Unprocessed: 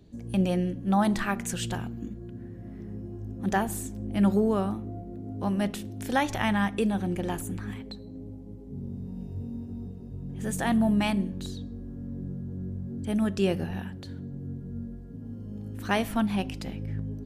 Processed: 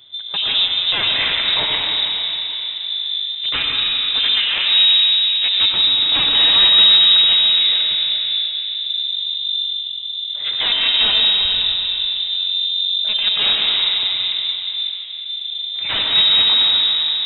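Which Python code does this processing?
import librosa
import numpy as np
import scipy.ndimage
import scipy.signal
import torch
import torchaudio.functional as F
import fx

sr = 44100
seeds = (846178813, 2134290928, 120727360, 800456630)

y = scipy.signal.sosfilt(scipy.signal.butter(4, 190.0, 'highpass', fs=sr, output='sos'), x)
y = fx.fold_sine(y, sr, drive_db=17, ceiling_db=-10.0)
y = fx.rev_freeverb(y, sr, rt60_s=4.2, hf_ratio=0.6, predelay_ms=55, drr_db=-1.5)
y = fx.freq_invert(y, sr, carrier_hz=3800)
y = y * 10.0 ** (-8.0 / 20.0)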